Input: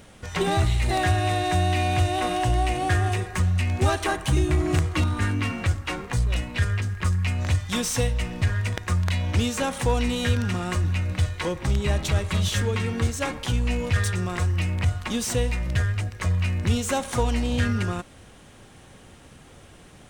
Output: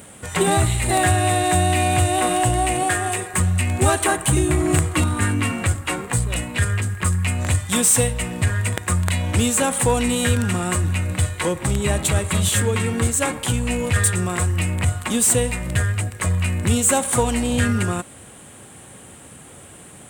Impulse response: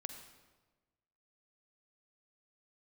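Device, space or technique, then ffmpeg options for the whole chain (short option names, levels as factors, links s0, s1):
budget condenser microphone: -filter_complex "[0:a]highpass=90,highshelf=f=6800:t=q:w=3:g=6.5,asettb=1/sr,asplit=3[s0][s1][s2];[s0]atrim=end=2.834[s3];[s1]atrim=start=2.83:end=3.34,asetpts=PTS-STARTPTS,afade=t=in:d=0.004:c=qsin,afade=t=out:st=0.506:d=0.004:c=qsin,highpass=f=340:p=1[s4];[s2]atrim=start=3.336[s5];[s3][s4]acrossfade=d=0.004:c1=hsin:c2=qsin[s6];[s6][s5]acrossfade=d=0.004:c1=qsin:c2=hsin,volume=1.88"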